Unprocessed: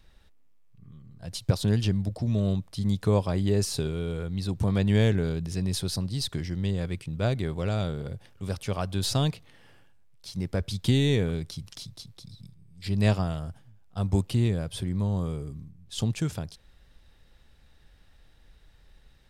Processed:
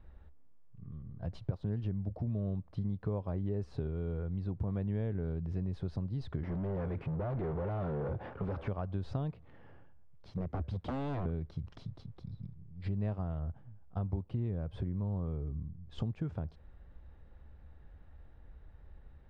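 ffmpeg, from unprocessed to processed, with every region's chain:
-filter_complex "[0:a]asettb=1/sr,asplit=3[s0][s1][s2];[s0]atrim=end=6.434[s3];[s1]atrim=start=6.43:end=8.68,asetpts=PTS-STARTPTS,afade=t=in:d=0.004:c=qsin,afade=t=out:st=2.246:d=0.004:c=qsin,asoftclip=type=hard:threshold=0.0355,asplit=2[s4][s5];[s5]highpass=f=720:p=1,volume=39.8,asoftclip=type=tanh:threshold=0.0668[s6];[s4][s6]amix=inputs=2:normalize=0,lowpass=f=1200:p=1,volume=0.501[s7];[s2]atrim=start=8.676[s8];[s3][s7]acrossfade=d=0.004:c1=hsin:c2=qsin[s9];[s9][s8]acrossfade=d=0.004:c1=qsin:c2=hsin,asettb=1/sr,asplit=3[s10][s11][s12];[s10]atrim=end=10.304[s13];[s11]atrim=start=10.3:end=11.26,asetpts=PTS-STARTPTS,afade=t=in:d=0.004:c=qsin,afade=t=out:st=0.956:d=0.004:c=qsin,highpass=f=42:p=1,acrossover=split=250|3000[s14][s15][s16];[s15]acompressor=threshold=0.02:ratio=2:attack=3.2:release=140:knee=2.83:detection=peak[s17];[s14][s17][s16]amix=inputs=3:normalize=0,aeval=exprs='0.0422*(abs(mod(val(0)/0.0422+3,4)-2)-1)':c=same[s18];[s12]atrim=start=11.256[s19];[s13][s18]acrossfade=d=0.004:c1=hsin:c2=qsin[s20];[s20][s19]acrossfade=d=0.004:c1=qsin:c2=hsin,lowpass=1200,equalizer=f=71:t=o:w=0.42:g=9,acompressor=threshold=0.0178:ratio=5,volume=1.19"

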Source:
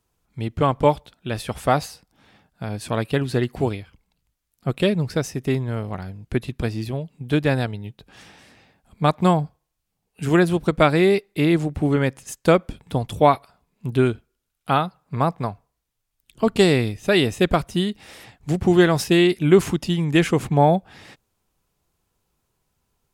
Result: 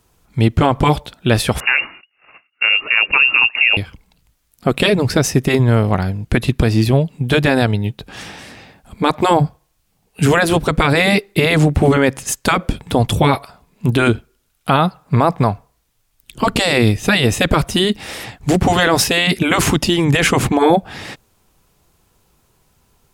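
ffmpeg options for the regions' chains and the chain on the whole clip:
-filter_complex "[0:a]asettb=1/sr,asplit=3[s0][s1][s2];[s0]atrim=end=1.604[s3];[s1]atrim=start=1.6:end=3.77,asetpts=PTS-STARTPTS,afade=t=in:d=0.004:c=qsin,afade=t=out:st=2.166:d=0.004:c=qsin,agate=range=0.158:threshold=0.00178:ratio=16:release=100:detection=peak,lowpass=f=2500:t=q:w=0.5098,lowpass=f=2500:t=q:w=0.6013,lowpass=f=2500:t=q:w=0.9,lowpass=f=2500:t=q:w=2.563,afreqshift=-2900[s4];[s2]atrim=start=3.766[s5];[s3][s4]acrossfade=d=0.004:c1=hsin:c2=qsin[s6];[s6][s5]acrossfade=d=0.004:c1=qsin:c2=hsin,afftfilt=real='re*lt(hypot(re,im),0.794)':imag='im*lt(hypot(re,im),0.794)':win_size=1024:overlap=0.75,alimiter=level_in=6.31:limit=0.891:release=50:level=0:latency=1,volume=0.794"

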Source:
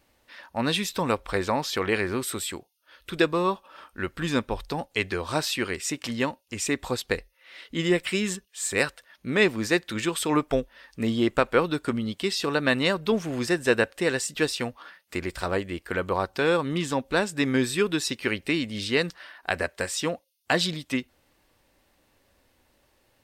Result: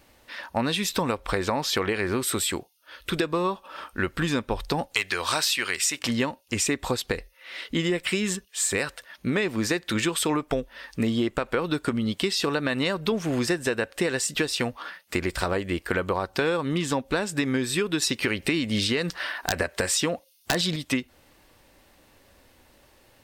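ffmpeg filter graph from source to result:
-filter_complex "[0:a]asettb=1/sr,asplit=3[s0][s1][s2];[s0]atrim=end=4.944[s3];[s1]atrim=start=4.94:end=5.99,asetpts=PTS-STARTPTS,afade=t=in:d=0.004:c=qsin,afade=t=out:st=1.046:d=0.004:c=qsin,tiltshelf=f=750:g=-9,asoftclip=type=hard:threshold=0.282[s4];[s2]atrim=start=5.986[s5];[s3][s4]acrossfade=d=0.004:c1=hsin:c2=qsin[s6];[s6][s5]acrossfade=d=0.004:c1=qsin:c2=hsin,asettb=1/sr,asplit=3[s7][s8][s9];[s7]atrim=end=18.024[s10];[s8]atrim=start=18.02:end=20.76,asetpts=PTS-STARTPTS,afade=t=in:d=0.004:c=qsin,afade=t=out:st=2.736:d=0.004:c=qsin,aeval=exprs='(mod(2.99*val(0)+1,2)-1)/2.99':c=same,acontrast=51[s11];[s9]atrim=start=20.756[s12];[s10][s11]acrossfade=d=0.004:c1=hsin:c2=qsin[s13];[s13][s12]acrossfade=d=0.004:c1=qsin:c2=hsin,alimiter=limit=0.2:level=0:latency=1:release=126,acompressor=threshold=0.0316:ratio=6,volume=2.51"

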